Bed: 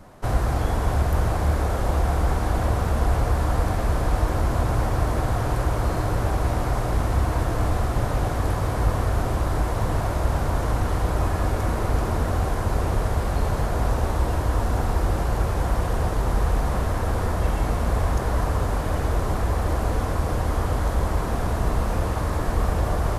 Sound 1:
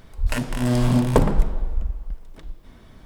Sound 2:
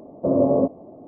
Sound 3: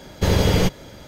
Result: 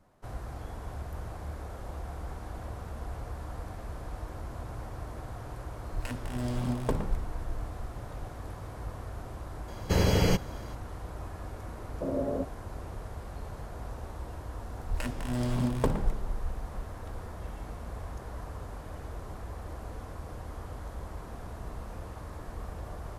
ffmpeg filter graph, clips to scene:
-filter_complex "[1:a]asplit=2[a][b];[0:a]volume=-17.5dB[c];[3:a]asuperstop=centerf=3600:order=4:qfactor=6.7[d];[a]atrim=end=3.05,asetpts=PTS-STARTPTS,volume=-13dB,afade=t=in:d=0.004:c=hsin,afade=t=out:st=3.046:d=0.004:c=hsin,adelay=252693S[e];[d]atrim=end=1.07,asetpts=PTS-STARTPTS,volume=-6.5dB,afade=t=in:d=0.004:c=hsin,afade=t=out:st=1.066:d=0.004:c=hsin,adelay=9680[f];[2:a]atrim=end=1.07,asetpts=PTS-STARTPTS,volume=-13dB,afade=t=in:d=0.004:c=hsin,afade=t=out:st=1.066:d=0.004:c=hsin,adelay=11770[g];[b]atrim=end=3.05,asetpts=PTS-STARTPTS,volume=-10.5dB,afade=t=in:d=0.004:c=hsin,afade=t=out:st=3.046:d=0.004:c=hsin,adelay=14680[h];[c][e][f][g][h]amix=inputs=5:normalize=0"

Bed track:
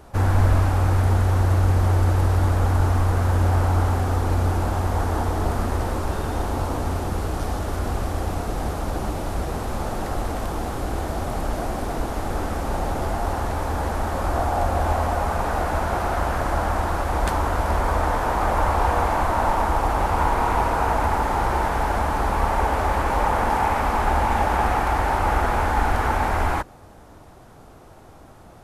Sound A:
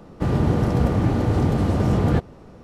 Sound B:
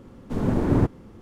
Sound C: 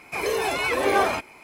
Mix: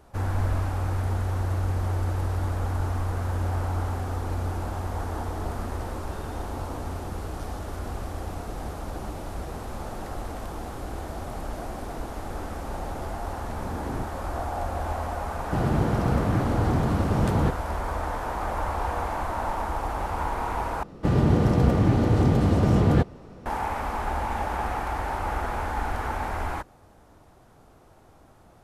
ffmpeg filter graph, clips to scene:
-filter_complex "[1:a]asplit=2[a][b];[0:a]volume=-8dB,asplit=2[c][d];[c]atrim=end=20.834[e];[b]atrim=end=2.63,asetpts=PTS-STARTPTS,volume=-0.5dB[f];[d]atrim=start=23.456[g];[2:a]atrim=end=1.21,asetpts=PTS-STARTPTS,volume=-14.5dB,afade=t=in:d=0.004:c=hsin,afade=t=out:st=1.206:d=0.004:c=hsin,adelay=13180[h];[a]atrim=end=2.63,asetpts=PTS-STARTPTS,volume=-4.5dB,afade=t=in:d=0.004:c=hsin,afade=t=out:st=2.626:d=0.004:c=hsin,adelay=15310[i];[e][f]acrossfade=d=0.004:c1=hsin:c2=hsin[j];[j][g]acrossfade=d=0.004:c1=hsin:c2=hsin[k];[k][h][i]amix=inputs=3:normalize=0"

